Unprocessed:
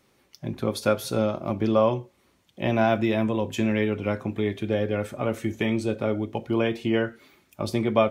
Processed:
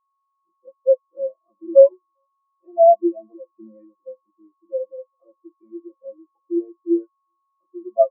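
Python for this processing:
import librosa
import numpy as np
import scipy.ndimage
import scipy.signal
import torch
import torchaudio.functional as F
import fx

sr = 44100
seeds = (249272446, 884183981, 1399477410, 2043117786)

p1 = scipy.signal.sosfilt(scipy.signal.butter(2, 320.0, 'highpass', fs=sr, output='sos'), x)
p2 = p1 + 0.68 * np.pad(p1, (int(5.9 * sr / 1000.0), 0))[:len(p1)]
p3 = fx.hpss(p2, sr, part='harmonic', gain_db=3)
p4 = 10.0 ** (-16.0 / 20.0) * np.tanh(p3 / 10.0 ** (-16.0 / 20.0))
p5 = p3 + F.gain(torch.from_numpy(p4), -3.5).numpy()
p6 = p5 + 10.0 ** (-26.0 / 20.0) * np.sin(2.0 * np.pi * 1100.0 * np.arange(len(p5)) / sr)
p7 = fx.air_absorb(p6, sr, metres=390.0)
p8 = p7 + 10.0 ** (-16.5 / 20.0) * np.pad(p7, (int(398 * sr / 1000.0), 0))[:len(p7)]
p9 = fx.spectral_expand(p8, sr, expansion=4.0)
y = F.gain(torch.from_numpy(p9), 2.5).numpy()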